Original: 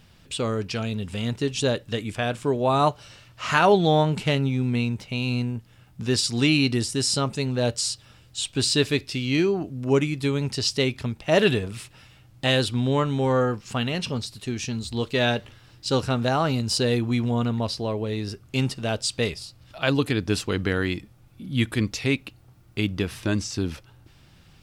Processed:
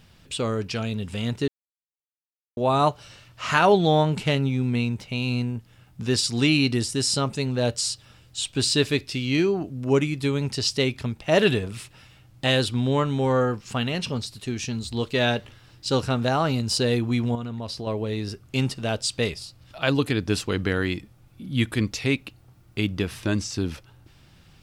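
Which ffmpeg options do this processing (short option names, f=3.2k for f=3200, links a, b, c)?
-filter_complex "[0:a]asettb=1/sr,asplit=3[a][b][c];[a]atrim=end=17.354[d];[b]atrim=start=17.35:end=17.87,asetpts=PTS-STARTPTS,afade=t=in:d=0.004:c=qsin,afade=t=out:st=0.516:d=0.004:c=qsin,acompressor=threshold=-29dB:ratio=4:attack=3.2:release=140:knee=1:detection=peak[e];[c]atrim=start=17.866[f];[d][e]acrossfade=d=0.004:c1=hsin:c2=qsin[g];[g][f]acrossfade=d=0.004:c1=qsin:c2=hsin,asplit=3[h][i][j];[h]atrim=end=1.48,asetpts=PTS-STARTPTS,afade=t=out:st=1.476:d=0.004:c=hsin[k];[i]atrim=start=1.48:end=2.57,asetpts=PTS-STARTPTS,volume=0[l];[j]atrim=start=2.57,asetpts=PTS-STARTPTS,afade=t=in:d=0.004:c=hsin[m];[k][l][m]concat=n=3:v=0:a=1"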